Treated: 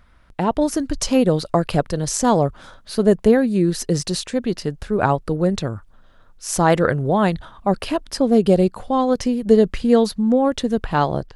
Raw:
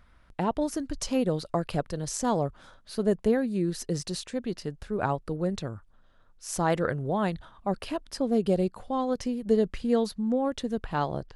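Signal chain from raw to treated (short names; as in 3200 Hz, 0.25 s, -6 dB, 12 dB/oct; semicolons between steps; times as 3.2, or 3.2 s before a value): AGC gain up to 5 dB; gain +5 dB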